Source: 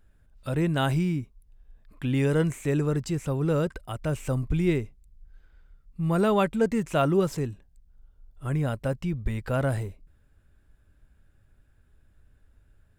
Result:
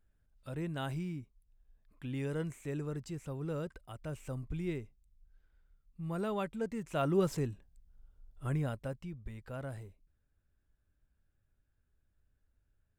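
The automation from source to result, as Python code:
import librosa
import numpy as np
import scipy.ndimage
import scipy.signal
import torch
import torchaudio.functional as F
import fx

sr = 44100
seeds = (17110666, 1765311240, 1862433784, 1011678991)

y = fx.gain(x, sr, db=fx.line((6.79, -13.0), (7.25, -5.0), (8.46, -5.0), (9.18, -16.0)))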